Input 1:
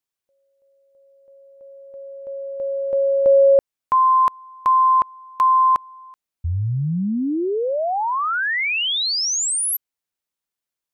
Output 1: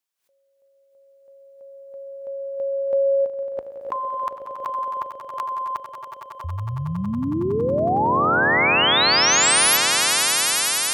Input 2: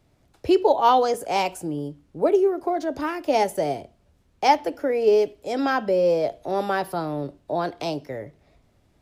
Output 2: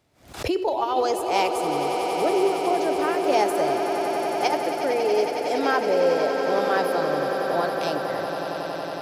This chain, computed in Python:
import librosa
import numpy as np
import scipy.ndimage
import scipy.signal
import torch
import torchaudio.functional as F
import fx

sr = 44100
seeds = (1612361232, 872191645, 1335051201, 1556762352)

y = scipy.signal.sosfilt(scipy.signal.butter(2, 46.0, 'highpass', fs=sr, output='sos'), x)
y = fx.low_shelf(y, sr, hz=330.0, db=-9.0)
y = fx.over_compress(y, sr, threshold_db=-20.0, ratio=-0.5)
y = fx.echo_swell(y, sr, ms=92, loudest=8, wet_db=-11)
y = fx.pre_swell(y, sr, db_per_s=120.0)